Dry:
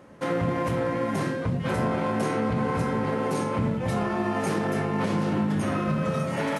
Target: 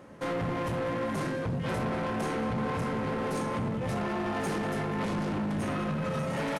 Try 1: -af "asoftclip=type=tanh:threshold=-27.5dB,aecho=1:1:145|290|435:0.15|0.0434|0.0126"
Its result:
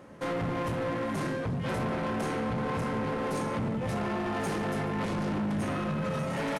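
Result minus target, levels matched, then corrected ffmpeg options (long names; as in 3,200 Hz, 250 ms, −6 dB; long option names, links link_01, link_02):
echo 52 ms early
-af "asoftclip=type=tanh:threshold=-27.5dB,aecho=1:1:197|394|591:0.15|0.0434|0.0126"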